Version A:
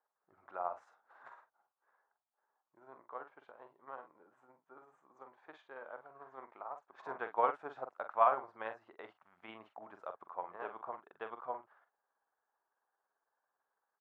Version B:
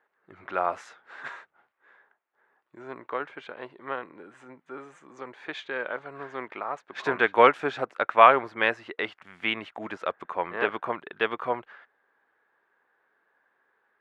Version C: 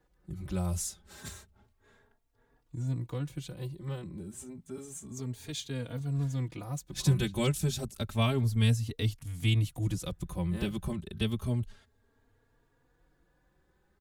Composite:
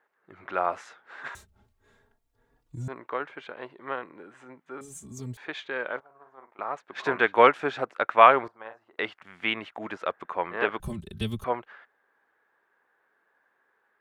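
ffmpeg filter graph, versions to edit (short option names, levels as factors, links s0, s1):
-filter_complex "[2:a]asplit=3[s0][s1][s2];[0:a]asplit=2[s3][s4];[1:a]asplit=6[s5][s6][s7][s8][s9][s10];[s5]atrim=end=1.352[s11];[s0]atrim=start=1.348:end=2.882[s12];[s6]atrim=start=2.878:end=4.812[s13];[s1]atrim=start=4.808:end=5.372[s14];[s7]atrim=start=5.368:end=6.002[s15];[s3]atrim=start=5.998:end=6.592[s16];[s8]atrim=start=6.588:end=8.482[s17];[s4]atrim=start=8.478:end=8.962[s18];[s9]atrim=start=8.958:end=10.802[s19];[s2]atrim=start=10.798:end=11.442[s20];[s10]atrim=start=11.438[s21];[s11][s12]acrossfade=d=0.004:c1=hsin:c2=hsin[s22];[s22][s13]acrossfade=d=0.004:c1=hsin:c2=hsin[s23];[s23][s14]acrossfade=d=0.004:c1=hsin:c2=hsin[s24];[s24][s15]acrossfade=d=0.004:c1=hsin:c2=hsin[s25];[s25][s16]acrossfade=d=0.004:c1=hsin:c2=hsin[s26];[s26][s17]acrossfade=d=0.004:c1=hsin:c2=hsin[s27];[s27][s18]acrossfade=d=0.004:c1=hsin:c2=hsin[s28];[s28][s19]acrossfade=d=0.004:c1=hsin:c2=hsin[s29];[s29][s20]acrossfade=d=0.004:c1=hsin:c2=hsin[s30];[s30][s21]acrossfade=d=0.004:c1=hsin:c2=hsin"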